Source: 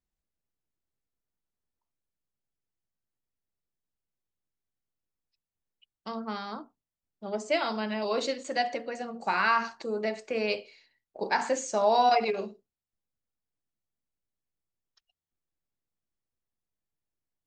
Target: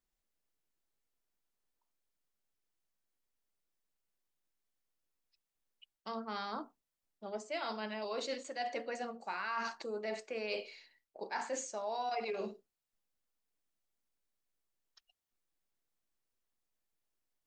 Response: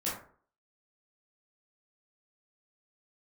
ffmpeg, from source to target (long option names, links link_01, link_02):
-af "equalizer=frequency=97:width_type=o:width=2.2:gain=-10.5,areverse,acompressor=threshold=-39dB:ratio=6,areverse,volume=2.5dB"